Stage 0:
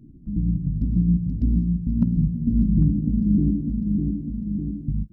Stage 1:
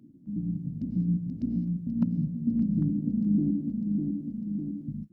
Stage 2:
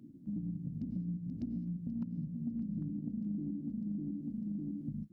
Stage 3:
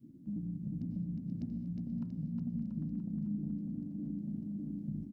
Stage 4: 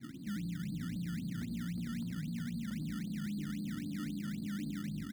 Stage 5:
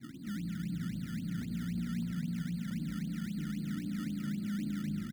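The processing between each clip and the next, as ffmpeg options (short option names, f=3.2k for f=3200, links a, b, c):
-af "highpass=240,equalizer=f=400:w=3.2:g=-6.5"
-af "acompressor=threshold=-36dB:ratio=6"
-filter_complex "[0:a]adynamicequalizer=threshold=0.00316:dfrequency=300:dqfactor=1.5:tfrequency=300:tqfactor=1.5:attack=5:release=100:ratio=0.375:range=2:mode=cutabove:tftype=bell,bandreject=f=94.42:t=h:w=4,bandreject=f=188.84:t=h:w=4,bandreject=f=283.26:t=h:w=4,bandreject=f=377.68:t=h:w=4,bandreject=f=472.1:t=h:w=4,bandreject=f=566.52:t=h:w=4,bandreject=f=660.94:t=h:w=4,bandreject=f=755.36:t=h:w=4,bandreject=f=849.78:t=h:w=4,bandreject=f=944.2:t=h:w=4,bandreject=f=1.03862k:t=h:w=4,bandreject=f=1.13304k:t=h:w=4,bandreject=f=1.22746k:t=h:w=4,bandreject=f=1.32188k:t=h:w=4,bandreject=f=1.4163k:t=h:w=4,bandreject=f=1.51072k:t=h:w=4,bandreject=f=1.60514k:t=h:w=4,bandreject=f=1.69956k:t=h:w=4,bandreject=f=1.79398k:t=h:w=4,bandreject=f=1.8884k:t=h:w=4,bandreject=f=1.98282k:t=h:w=4,bandreject=f=2.07724k:t=h:w=4,asplit=2[a][b];[b]aecho=0:1:360|684|975.6|1238|1474:0.631|0.398|0.251|0.158|0.1[c];[a][c]amix=inputs=2:normalize=0"
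-filter_complex "[0:a]asplit=2[a][b];[b]acompressor=threshold=-46dB:ratio=6,volume=1dB[c];[a][c]amix=inputs=2:normalize=0,alimiter=level_in=10.5dB:limit=-24dB:level=0:latency=1:release=29,volume=-10.5dB,acrusher=samples=19:mix=1:aa=0.000001:lfo=1:lforange=19:lforate=3.8,volume=1dB"
-filter_complex "[0:a]asplit=2[a][b];[b]adelay=205,lowpass=f=1.6k:p=1,volume=-4.5dB,asplit=2[c][d];[d]adelay=205,lowpass=f=1.6k:p=1,volume=0.37,asplit=2[e][f];[f]adelay=205,lowpass=f=1.6k:p=1,volume=0.37,asplit=2[g][h];[h]adelay=205,lowpass=f=1.6k:p=1,volume=0.37,asplit=2[i][j];[j]adelay=205,lowpass=f=1.6k:p=1,volume=0.37[k];[a][c][e][g][i][k]amix=inputs=6:normalize=0"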